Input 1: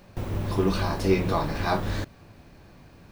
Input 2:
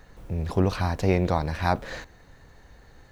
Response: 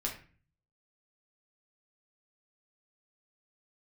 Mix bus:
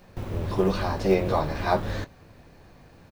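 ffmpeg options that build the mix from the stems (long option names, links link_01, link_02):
-filter_complex "[0:a]acrossover=split=6600[link_01][link_02];[link_02]acompressor=threshold=-56dB:ratio=4:attack=1:release=60[link_03];[link_01][link_03]amix=inputs=2:normalize=0,acrusher=bits=8:mode=log:mix=0:aa=0.000001,volume=-2dB[link_04];[1:a]equalizer=frequency=590:width=0.8:gain=10.5,volume=-1,adelay=21,volume=-9.5dB[link_05];[link_04][link_05]amix=inputs=2:normalize=0"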